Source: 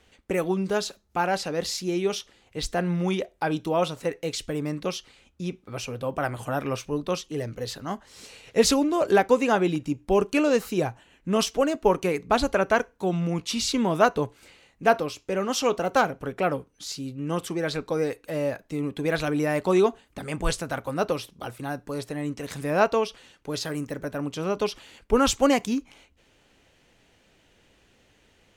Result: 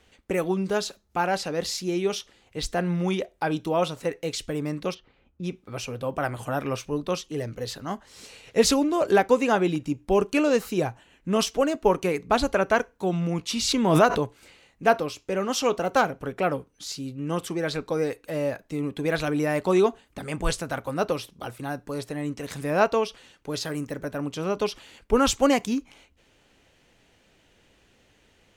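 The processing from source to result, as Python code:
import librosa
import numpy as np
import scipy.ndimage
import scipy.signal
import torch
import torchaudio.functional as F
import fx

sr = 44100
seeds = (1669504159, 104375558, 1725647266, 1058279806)

y = fx.spacing_loss(x, sr, db_at_10k=42, at=(4.93, 5.43), fade=0.02)
y = fx.pre_swell(y, sr, db_per_s=38.0, at=(13.61, 14.17), fade=0.02)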